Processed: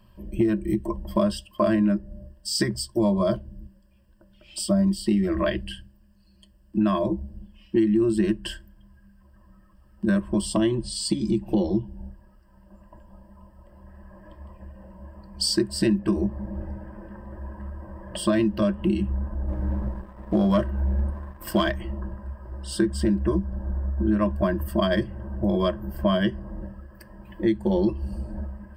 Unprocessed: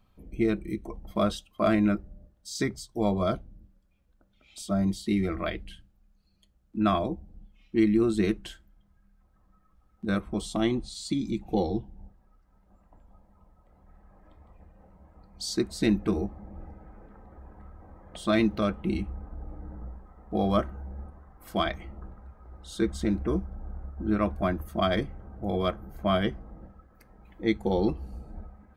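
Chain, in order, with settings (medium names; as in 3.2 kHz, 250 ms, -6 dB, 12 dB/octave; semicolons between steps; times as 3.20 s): rippled EQ curve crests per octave 1.3, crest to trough 15 dB; 19.48–21.71 s: waveshaping leveller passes 1; compression 4:1, threshold -27 dBFS, peak gain reduction 12.5 dB; trim +7 dB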